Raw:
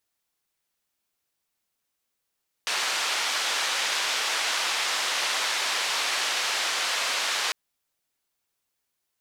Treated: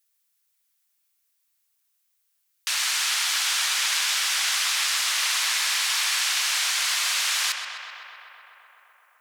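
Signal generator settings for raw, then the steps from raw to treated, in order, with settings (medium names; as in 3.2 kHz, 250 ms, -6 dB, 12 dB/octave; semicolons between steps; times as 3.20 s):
noise band 700–4700 Hz, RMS -27 dBFS 4.85 s
high-pass 1.3 kHz 12 dB/octave; treble shelf 7.1 kHz +10.5 dB; on a send: filtered feedback delay 128 ms, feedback 84%, low-pass 4.2 kHz, level -7 dB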